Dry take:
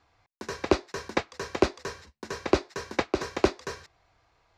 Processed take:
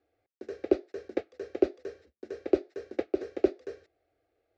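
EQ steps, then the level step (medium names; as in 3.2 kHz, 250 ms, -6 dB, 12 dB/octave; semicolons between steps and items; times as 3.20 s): band-pass filter 400 Hz, Q 0.75; static phaser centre 410 Hz, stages 4; 0.0 dB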